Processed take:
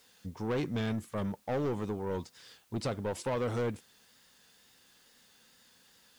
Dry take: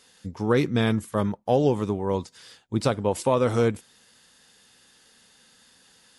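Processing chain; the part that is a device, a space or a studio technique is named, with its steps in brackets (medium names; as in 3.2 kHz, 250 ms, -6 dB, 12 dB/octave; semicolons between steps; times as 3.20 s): compact cassette (saturation -21.5 dBFS, distortion -10 dB; low-pass 8.3 kHz 12 dB/octave; wow and flutter; white noise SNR 32 dB); trim -6 dB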